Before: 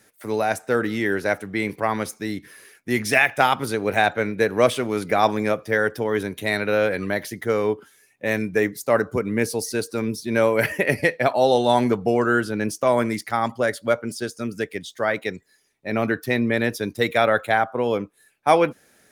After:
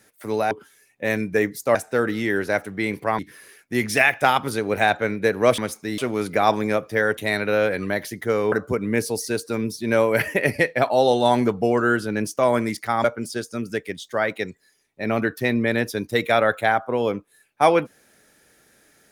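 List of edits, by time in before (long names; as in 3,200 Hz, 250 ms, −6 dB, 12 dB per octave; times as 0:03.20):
0:01.95–0:02.35: move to 0:04.74
0:05.93–0:06.37: remove
0:07.72–0:08.96: move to 0:00.51
0:13.48–0:13.90: remove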